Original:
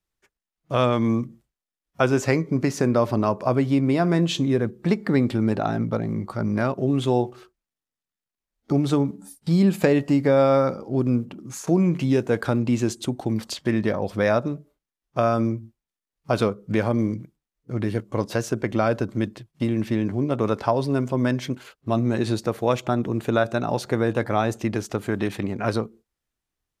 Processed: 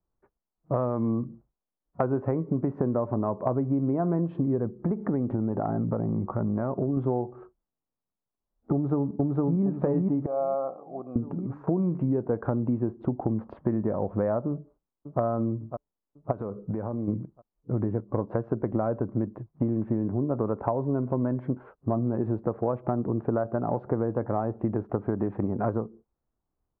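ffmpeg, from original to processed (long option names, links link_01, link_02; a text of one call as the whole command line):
ffmpeg -i in.wav -filter_complex "[0:a]asettb=1/sr,asplit=3[link_01][link_02][link_03];[link_01]atrim=end=4.804[link_04];[link_02]atrim=start=4.8:end=6.97,asetpts=PTS-STARTPTS,afade=type=in:duration=0.004:curve=qsin,afade=type=out:start_time=2.166:duration=0.004:curve=qsin,acompressor=threshold=-24dB:ratio=2.5:attack=3.2:release=140:knee=1:detection=peak[link_05];[link_03]atrim=start=6.966[link_06];[link_04][link_05]acrossfade=duration=0.004:curve1=hsin:curve2=qsin[link_07];[link_07][link_06]acrossfade=duration=0.004:curve1=qsin:curve2=hsin,asplit=2[link_08][link_09];[link_09]afade=type=in:start_time=8.73:duration=0.01,afade=type=out:start_time=9.62:duration=0.01,aecho=0:1:460|920|1380|1840|2300|2760|3220:0.944061|0.47203|0.236015|0.118008|0.0590038|0.0295019|0.014751[link_10];[link_08][link_10]amix=inputs=2:normalize=0,asettb=1/sr,asplit=3[link_11][link_12][link_13];[link_11]atrim=end=10.264[link_14];[link_12]atrim=start=10.26:end=11.16,asetpts=PTS-STARTPTS,afade=type=in:duration=0.004:curve=qsin,afade=type=out:start_time=0.896:duration=0.004:curve=qsin,asplit=3[link_15][link_16][link_17];[link_15]bandpass=frequency=730:width_type=q:width=8,volume=0dB[link_18];[link_16]bandpass=frequency=1090:width_type=q:width=8,volume=-6dB[link_19];[link_17]bandpass=frequency=2440:width_type=q:width=8,volume=-9dB[link_20];[link_18][link_19][link_20]amix=inputs=3:normalize=0[link_21];[link_13]atrim=start=11.156[link_22];[link_14][link_21]acrossfade=duration=0.004:curve1=hsin:curve2=qsin[link_23];[link_23][link_22]acrossfade=duration=0.004:curve1=qsin:curve2=hsin,asettb=1/sr,asplit=3[link_24][link_25][link_26];[link_24]atrim=end=12.624[link_27];[link_25]atrim=start=12.62:end=13.03,asetpts=PTS-STARTPTS,afade=type=in:duration=0.004:curve=qsin,afade=type=out:start_time=0.406:duration=0.004:curve=qsin,deesser=0.9[link_28];[link_26]atrim=start=13.026[link_29];[link_27][link_28]acrossfade=duration=0.004:curve1=hsin:curve2=qsin[link_30];[link_30][link_29]acrossfade=duration=0.004:curve1=qsin:curve2=hsin,asplit=2[link_31][link_32];[link_32]afade=type=in:start_time=14.5:duration=0.01,afade=type=out:start_time=15.21:duration=0.01,aecho=0:1:550|1100|1650|2200:0.16788|0.0755462|0.0339958|0.0152981[link_33];[link_31][link_33]amix=inputs=2:normalize=0,asplit=3[link_34][link_35][link_36];[link_34]afade=type=out:start_time=16.31:duration=0.02[link_37];[link_35]acompressor=threshold=-30dB:ratio=8:attack=3.2:release=140:knee=1:detection=peak,afade=type=in:start_time=16.31:duration=0.02,afade=type=out:start_time=17.07:duration=0.02[link_38];[link_36]afade=type=in:start_time=17.07:duration=0.02[link_39];[link_37][link_38][link_39]amix=inputs=3:normalize=0,lowpass=frequency=1100:width=0.5412,lowpass=frequency=1100:width=1.3066,acompressor=threshold=-27dB:ratio=6,volume=4dB" out.wav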